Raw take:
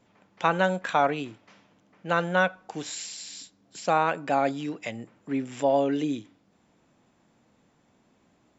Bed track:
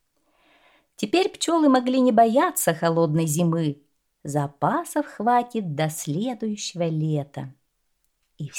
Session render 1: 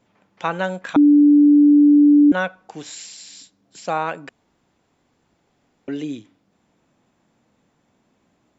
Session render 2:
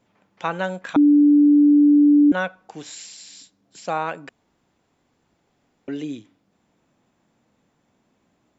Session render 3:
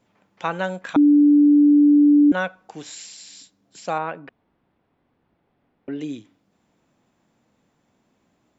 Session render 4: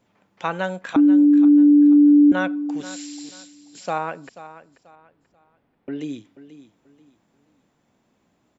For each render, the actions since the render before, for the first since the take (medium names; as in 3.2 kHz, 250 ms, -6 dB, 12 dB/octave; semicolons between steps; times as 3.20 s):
0.96–2.32 s: bleep 292 Hz -8 dBFS; 4.29–5.88 s: room tone
trim -2 dB
3.98–6.01 s: distance through air 330 m
feedback delay 486 ms, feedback 30%, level -15 dB